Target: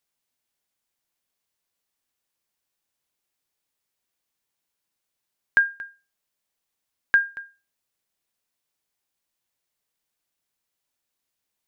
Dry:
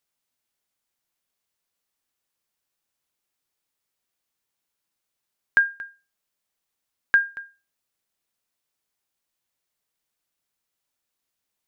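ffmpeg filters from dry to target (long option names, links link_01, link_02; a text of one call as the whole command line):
ffmpeg -i in.wav -af "equalizer=frequency=1300:width_type=o:width=0.2:gain=-2.5" out.wav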